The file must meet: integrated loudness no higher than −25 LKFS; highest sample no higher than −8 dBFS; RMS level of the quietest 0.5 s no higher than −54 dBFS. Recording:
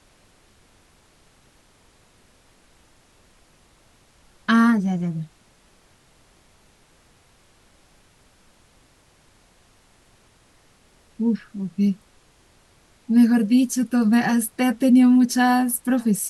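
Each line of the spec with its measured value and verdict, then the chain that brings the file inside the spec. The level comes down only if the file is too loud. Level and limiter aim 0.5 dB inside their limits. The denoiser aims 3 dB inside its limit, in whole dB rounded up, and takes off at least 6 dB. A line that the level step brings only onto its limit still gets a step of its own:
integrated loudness −19.5 LKFS: out of spec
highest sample −6.0 dBFS: out of spec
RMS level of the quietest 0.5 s −57 dBFS: in spec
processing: level −6 dB

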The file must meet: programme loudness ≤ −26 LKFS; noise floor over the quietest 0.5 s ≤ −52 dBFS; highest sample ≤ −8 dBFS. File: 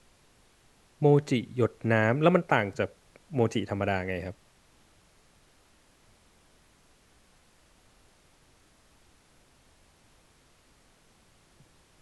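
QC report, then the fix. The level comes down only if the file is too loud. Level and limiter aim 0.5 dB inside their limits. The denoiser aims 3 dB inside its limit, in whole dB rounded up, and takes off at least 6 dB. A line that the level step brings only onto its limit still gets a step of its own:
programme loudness −27.0 LKFS: in spec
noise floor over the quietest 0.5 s −62 dBFS: in spec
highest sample −6.5 dBFS: out of spec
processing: brickwall limiter −8.5 dBFS

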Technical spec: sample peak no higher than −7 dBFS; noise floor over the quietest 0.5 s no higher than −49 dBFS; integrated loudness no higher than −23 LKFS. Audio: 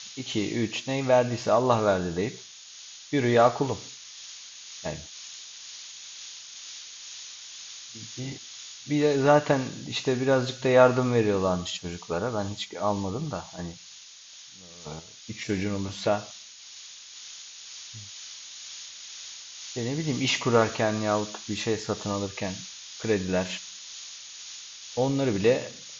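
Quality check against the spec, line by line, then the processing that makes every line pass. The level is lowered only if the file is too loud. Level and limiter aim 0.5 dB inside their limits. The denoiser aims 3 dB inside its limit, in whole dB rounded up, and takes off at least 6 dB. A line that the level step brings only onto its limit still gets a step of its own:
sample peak −5.5 dBFS: out of spec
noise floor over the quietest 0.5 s −48 dBFS: out of spec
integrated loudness −26.5 LKFS: in spec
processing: broadband denoise 6 dB, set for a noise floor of −48 dBFS
brickwall limiter −7.5 dBFS

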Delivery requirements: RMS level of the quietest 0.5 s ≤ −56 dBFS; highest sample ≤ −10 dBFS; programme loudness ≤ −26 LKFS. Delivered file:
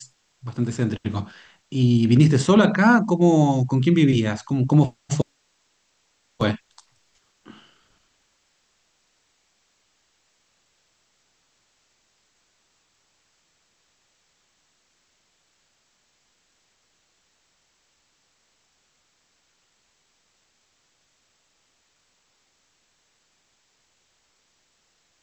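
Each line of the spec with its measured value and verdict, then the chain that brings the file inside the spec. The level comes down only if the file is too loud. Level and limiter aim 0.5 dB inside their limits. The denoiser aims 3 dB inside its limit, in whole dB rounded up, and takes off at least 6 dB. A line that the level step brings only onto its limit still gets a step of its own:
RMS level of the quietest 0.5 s −67 dBFS: in spec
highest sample −5.0 dBFS: out of spec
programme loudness −20.0 LKFS: out of spec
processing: level −6.5 dB

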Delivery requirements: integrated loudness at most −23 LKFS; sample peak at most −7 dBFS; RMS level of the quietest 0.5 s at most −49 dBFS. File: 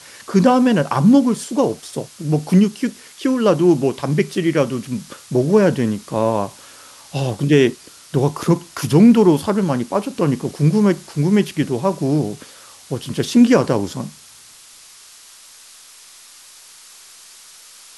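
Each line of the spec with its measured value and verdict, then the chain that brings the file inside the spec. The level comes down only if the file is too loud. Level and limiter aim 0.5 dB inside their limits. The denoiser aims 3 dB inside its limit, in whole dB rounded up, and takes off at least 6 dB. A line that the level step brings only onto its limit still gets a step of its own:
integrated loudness −17.5 LKFS: out of spec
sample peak −2.5 dBFS: out of spec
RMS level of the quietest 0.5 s −44 dBFS: out of spec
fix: level −6 dB

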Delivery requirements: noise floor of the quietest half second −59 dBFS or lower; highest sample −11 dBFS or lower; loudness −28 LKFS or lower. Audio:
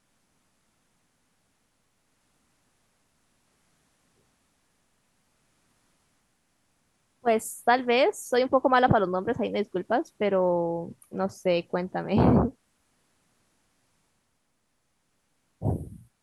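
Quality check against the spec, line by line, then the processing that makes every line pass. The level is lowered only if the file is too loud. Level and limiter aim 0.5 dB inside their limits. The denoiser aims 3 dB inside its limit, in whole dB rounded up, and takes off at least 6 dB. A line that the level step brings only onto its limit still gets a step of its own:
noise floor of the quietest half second −73 dBFS: in spec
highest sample −8.0 dBFS: out of spec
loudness −25.5 LKFS: out of spec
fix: level −3 dB
brickwall limiter −11.5 dBFS

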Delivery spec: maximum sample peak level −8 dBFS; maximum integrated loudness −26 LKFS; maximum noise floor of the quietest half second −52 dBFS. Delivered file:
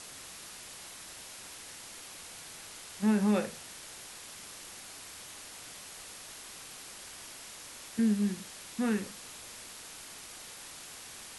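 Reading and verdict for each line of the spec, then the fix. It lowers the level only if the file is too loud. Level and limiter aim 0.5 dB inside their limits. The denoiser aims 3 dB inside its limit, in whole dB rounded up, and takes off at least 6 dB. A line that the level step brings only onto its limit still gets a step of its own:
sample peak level −17.5 dBFS: in spec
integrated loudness −37.5 LKFS: in spec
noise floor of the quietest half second −47 dBFS: out of spec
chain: broadband denoise 8 dB, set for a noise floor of −47 dBFS

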